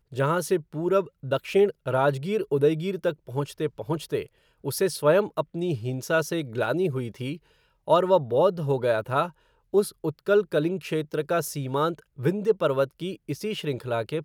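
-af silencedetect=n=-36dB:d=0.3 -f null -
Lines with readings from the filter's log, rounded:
silence_start: 4.24
silence_end: 4.64 | silence_duration: 0.40
silence_start: 7.36
silence_end: 7.88 | silence_duration: 0.51
silence_start: 9.29
silence_end: 9.74 | silence_duration: 0.45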